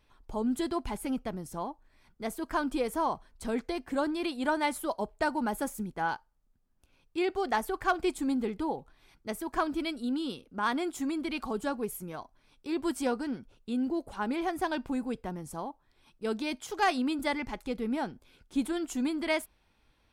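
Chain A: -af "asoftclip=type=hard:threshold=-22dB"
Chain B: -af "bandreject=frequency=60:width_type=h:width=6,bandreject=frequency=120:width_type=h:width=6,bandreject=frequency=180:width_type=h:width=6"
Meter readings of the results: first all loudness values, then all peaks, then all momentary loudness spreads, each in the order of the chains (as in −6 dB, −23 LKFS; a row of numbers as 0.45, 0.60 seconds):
−33.0, −33.0 LKFS; −22.0, −17.0 dBFS; 9, 10 LU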